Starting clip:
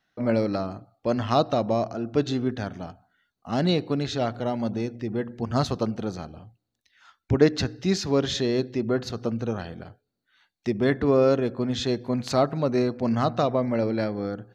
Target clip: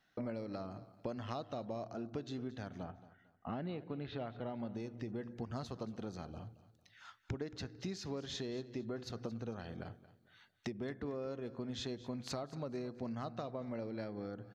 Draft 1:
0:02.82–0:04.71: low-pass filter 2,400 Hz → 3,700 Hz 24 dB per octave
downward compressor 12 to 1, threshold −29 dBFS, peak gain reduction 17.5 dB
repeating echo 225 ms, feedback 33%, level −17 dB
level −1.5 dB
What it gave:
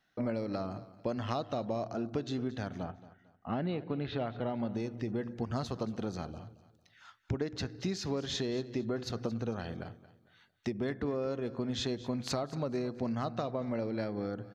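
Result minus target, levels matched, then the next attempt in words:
downward compressor: peak gain reduction −7.5 dB
0:02.82–0:04.71: low-pass filter 2,400 Hz → 3,700 Hz 24 dB per octave
downward compressor 12 to 1, threshold −37 dBFS, peak gain reduction 25 dB
repeating echo 225 ms, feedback 33%, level −17 dB
level −1.5 dB

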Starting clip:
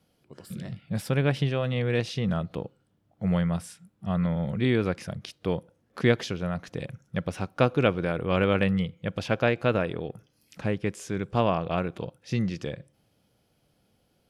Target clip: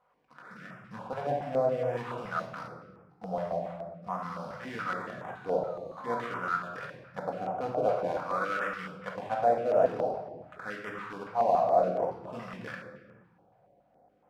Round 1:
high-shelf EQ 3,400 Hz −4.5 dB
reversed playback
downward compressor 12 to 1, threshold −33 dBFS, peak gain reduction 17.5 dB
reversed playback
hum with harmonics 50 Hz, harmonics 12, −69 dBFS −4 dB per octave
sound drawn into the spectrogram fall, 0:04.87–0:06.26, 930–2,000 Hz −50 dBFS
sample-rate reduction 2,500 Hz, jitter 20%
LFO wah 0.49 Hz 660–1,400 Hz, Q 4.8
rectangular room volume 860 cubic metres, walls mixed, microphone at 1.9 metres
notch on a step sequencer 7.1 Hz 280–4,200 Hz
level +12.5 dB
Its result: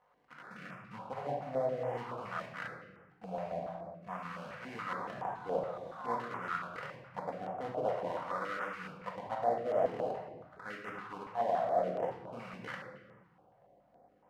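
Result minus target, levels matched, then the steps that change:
downward compressor: peak gain reduction +6 dB; sample-rate reduction: distortion +5 dB
change: downward compressor 12 to 1, threshold −26.5 dBFS, peak gain reduction 12 dB
change: sample-rate reduction 5,300 Hz, jitter 20%

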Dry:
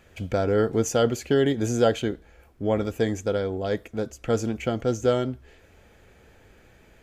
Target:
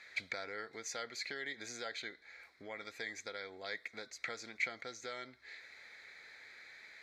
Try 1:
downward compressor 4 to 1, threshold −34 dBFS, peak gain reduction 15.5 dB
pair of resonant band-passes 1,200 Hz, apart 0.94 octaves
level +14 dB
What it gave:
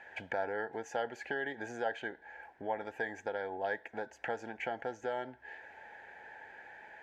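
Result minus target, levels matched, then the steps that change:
4,000 Hz band −12.0 dB
change: pair of resonant band-passes 2,900 Hz, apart 0.94 octaves

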